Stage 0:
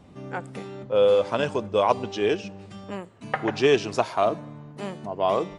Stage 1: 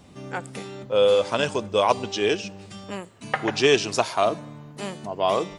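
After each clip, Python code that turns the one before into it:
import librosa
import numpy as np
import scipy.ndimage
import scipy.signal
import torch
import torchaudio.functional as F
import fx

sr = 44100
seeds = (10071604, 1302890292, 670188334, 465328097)

y = fx.high_shelf(x, sr, hz=3000.0, db=11.5)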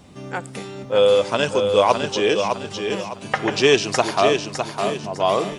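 y = fx.echo_feedback(x, sr, ms=607, feedback_pct=34, wet_db=-6)
y = F.gain(torch.from_numpy(y), 3.0).numpy()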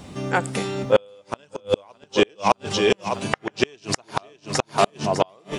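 y = fx.gate_flip(x, sr, shuts_db=-10.0, range_db=-38)
y = F.gain(torch.from_numpy(y), 6.5).numpy()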